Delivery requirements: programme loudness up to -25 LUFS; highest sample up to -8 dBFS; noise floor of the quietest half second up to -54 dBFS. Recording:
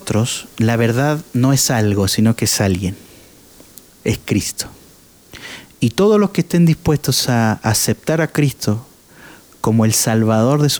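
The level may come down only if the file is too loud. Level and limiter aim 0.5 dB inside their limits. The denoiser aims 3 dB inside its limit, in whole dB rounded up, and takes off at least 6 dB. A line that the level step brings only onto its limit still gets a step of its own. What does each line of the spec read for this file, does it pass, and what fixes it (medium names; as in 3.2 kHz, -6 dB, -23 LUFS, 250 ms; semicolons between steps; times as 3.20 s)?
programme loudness -16.0 LUFS: fail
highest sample -4.5 dBFS: fail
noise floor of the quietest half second -46 dBFS: fail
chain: trim -9.5 dB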